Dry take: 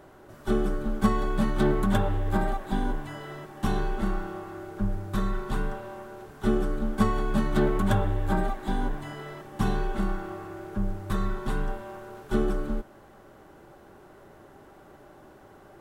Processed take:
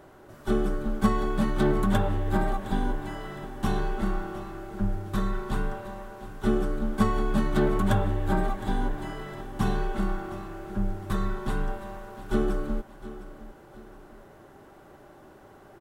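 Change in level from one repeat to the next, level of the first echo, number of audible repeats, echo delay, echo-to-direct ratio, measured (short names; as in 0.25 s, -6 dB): -8.0 dB, -15.5 dB, 2, 0.712 s, -15.0 dB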